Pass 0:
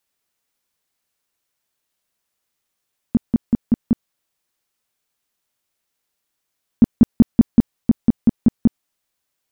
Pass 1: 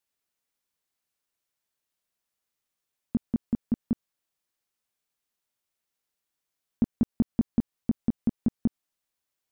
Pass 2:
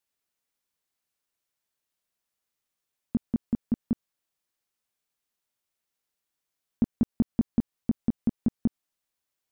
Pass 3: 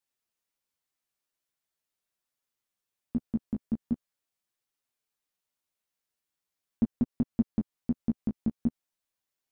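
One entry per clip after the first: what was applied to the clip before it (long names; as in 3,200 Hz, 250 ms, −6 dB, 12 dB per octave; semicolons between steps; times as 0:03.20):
downward compressor 2.5 to 1, threshold −14 dBFS, peak gain reduction 5.5 dB; level −8 dB
no processing that can be heard
flanger 0.42 Hz, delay 7 ms, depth 7.9 ms, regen +3%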